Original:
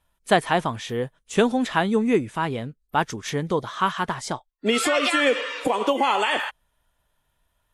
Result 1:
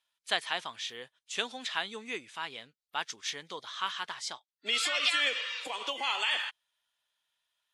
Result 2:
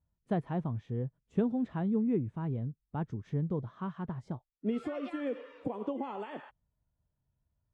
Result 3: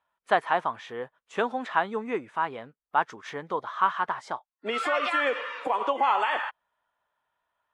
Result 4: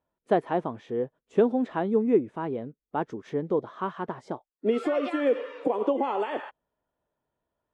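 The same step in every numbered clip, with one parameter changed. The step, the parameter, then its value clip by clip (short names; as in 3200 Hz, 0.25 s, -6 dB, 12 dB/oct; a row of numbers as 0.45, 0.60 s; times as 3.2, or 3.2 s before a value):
band-pass, frequency: 4000, 110, 1100, 380 Hz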